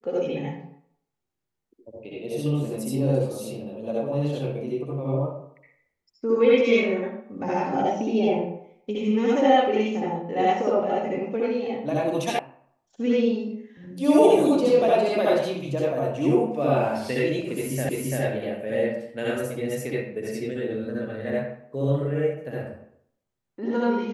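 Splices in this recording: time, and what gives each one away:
12.39 sound cut off
17.89 repeat of the last 0.34 s

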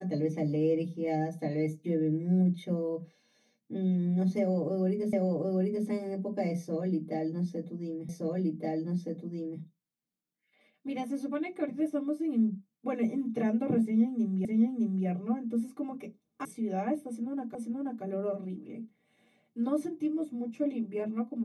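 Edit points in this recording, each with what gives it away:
5.13 repeat of the last 0.74 s
8.09 repeat of the last 1.52 s
14.45 repeat of the last 0.61 s
16.45 sound cut off
17.55 repeat of the last 0.48 s

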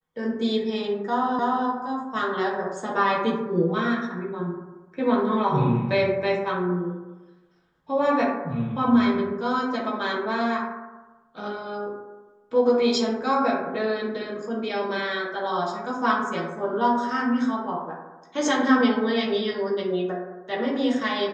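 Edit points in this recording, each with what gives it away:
1.39 repeat of the last 0.3 s

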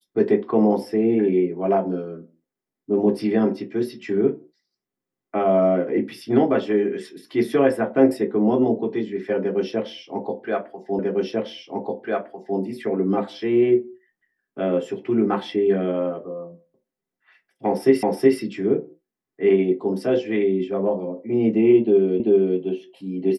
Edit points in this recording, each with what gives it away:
10.99 repeat of the last 1.6 s
18.03 repeat of the last 0.37 s
22.2 repeat of the last 0.39 s

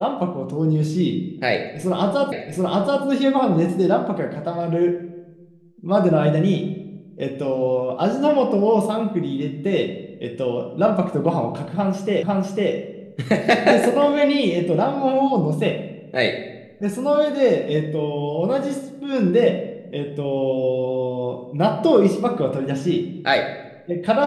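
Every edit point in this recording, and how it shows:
2.32 repeat of the last 0.73 s
12.23 repeat of the last 0.5 s

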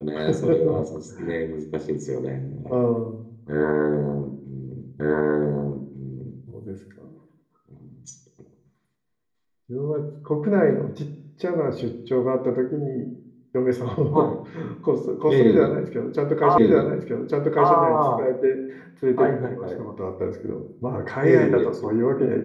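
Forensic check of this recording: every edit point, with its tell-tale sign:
5 repeat of the last 1.49 s
16.58 repeat of the last 1.15 s

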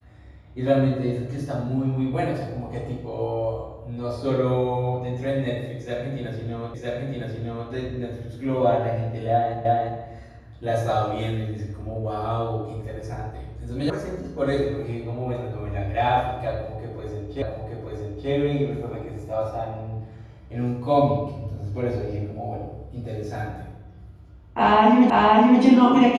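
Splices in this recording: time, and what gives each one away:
6.74 repeat of the last 0.96 s
9.65 repeat of the last 0.35 s
13.9 sound cut off
17.42 repeat of the last 0.88 s
25.1 repeat of the last 0.52 s

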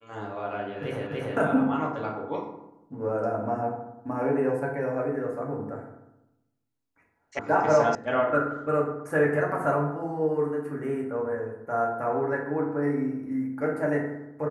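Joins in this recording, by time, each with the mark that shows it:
1.07 repeat of the last 0.29 s
7.39 sound cut off
7.95 sound cut off

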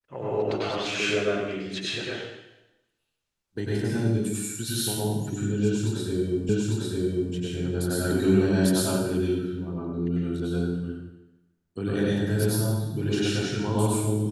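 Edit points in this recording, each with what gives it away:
6.49 repeat of the last 0.85 s

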